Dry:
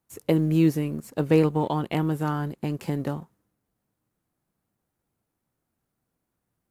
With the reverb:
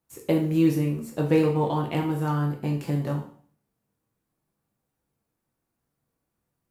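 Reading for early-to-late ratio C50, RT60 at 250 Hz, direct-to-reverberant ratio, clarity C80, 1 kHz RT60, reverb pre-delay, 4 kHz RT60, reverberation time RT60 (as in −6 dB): 8.0 dB, 0.50 s, 0.0 dB, 12.0 dB, 0.50 s, 4 ms, 0.45 s, 0.50 s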